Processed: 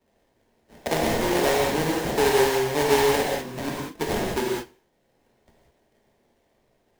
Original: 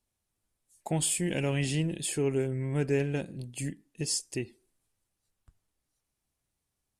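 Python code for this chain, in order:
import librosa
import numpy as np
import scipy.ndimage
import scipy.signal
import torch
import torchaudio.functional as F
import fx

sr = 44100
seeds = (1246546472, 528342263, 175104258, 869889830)

y = scipy.signal.sosfilt(scipy.signal.butter(2, 240.0, 'highpass', fs=sr, output='sos'), x)
y = fx.peak_eq(y, sr, hz=530.0, db=10.5, octaves=1.1)
y = fx.sample_hold(y, sr, seeds[0], rate_hz=1300.0, jitter_pct=20)
y = fx.rev_gated(y, sr, seeds[1], gate_ms=220, shape='flat', drr_db=-3.5)
y = fx.band_squash(y, sr, depth_pct=40)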